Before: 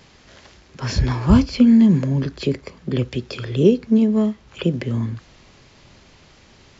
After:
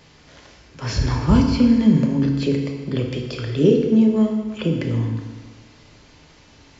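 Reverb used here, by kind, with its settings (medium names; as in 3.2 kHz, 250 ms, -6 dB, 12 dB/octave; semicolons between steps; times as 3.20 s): FDN reverb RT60 1.5 s, low-frequency decay 0.9×, high-frequency decay 0.9×, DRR 1.5 dB; trim -2 dB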